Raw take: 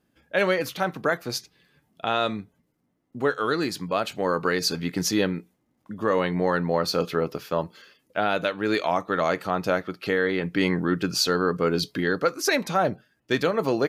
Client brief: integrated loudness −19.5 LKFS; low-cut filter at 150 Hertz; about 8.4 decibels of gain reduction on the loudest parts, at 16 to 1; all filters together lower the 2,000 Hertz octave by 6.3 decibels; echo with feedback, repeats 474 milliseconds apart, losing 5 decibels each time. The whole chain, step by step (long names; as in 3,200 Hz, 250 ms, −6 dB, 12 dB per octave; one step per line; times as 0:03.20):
high-pass filter 150 Hz
parametric band 2,000 Hz −8.5 dB
downward compressor 16 to 1, threshold −27 dBFS
repeating echo 474 ms, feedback 56%, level −5 dB
level +12.5 dB